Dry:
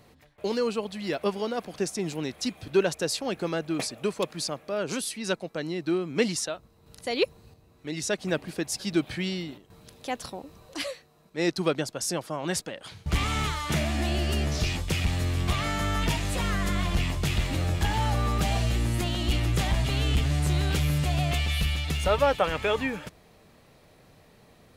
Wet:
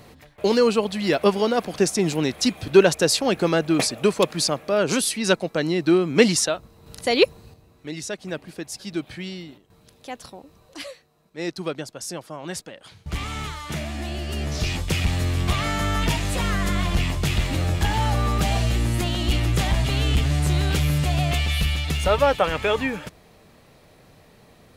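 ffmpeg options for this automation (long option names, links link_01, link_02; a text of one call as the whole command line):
ffmpeg -i in.wav -af "volume=16dB,afade=type=out:start_time=7.09:duration=1.03:silence=0.251189,afade=type=in:start_time=14.27:duration=0.56:silence=0.446684" out.wav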